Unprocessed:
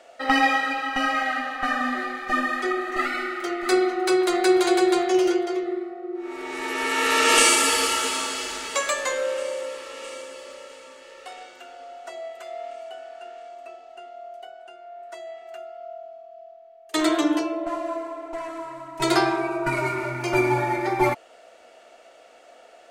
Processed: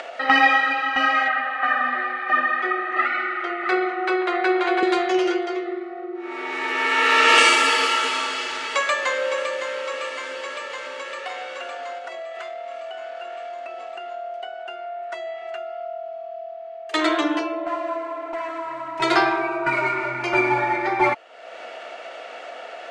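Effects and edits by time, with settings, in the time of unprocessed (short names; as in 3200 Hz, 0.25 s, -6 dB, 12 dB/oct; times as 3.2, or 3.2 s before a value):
1.28–4.83 three-band isolator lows -21 dB, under 280 Hz, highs -15 dB, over 3200 Hz
8.46–9.53 echo throw 0.56 s, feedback 65%, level -8.5 dB
11.98–14.12 compressor, threshold -40 dBFS
whole clip: upward compressor, threshold -27 dBFS; LPF 2300 Hz 12 dB/oct; tilt +3.5 dB/oct; gain +4 dB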